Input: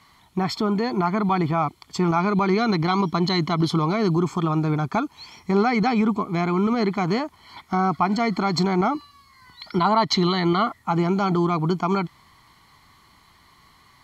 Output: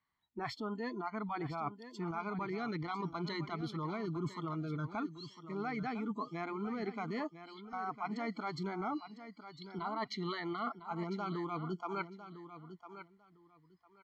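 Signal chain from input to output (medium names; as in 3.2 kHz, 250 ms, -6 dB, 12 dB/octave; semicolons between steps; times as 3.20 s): treble shelf 4.9 kHz -10.5 dB; spectral noise reduction 26 dB; peaking EQ 1.7 kHz +7 dB 0.45 oct; reverse; compression 12:1, threshold -30 dBFS, peak gain reduction 16 dB; reverse; feedback delay 1003 ms, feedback 19%, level -12 dB; trim -5.5 dB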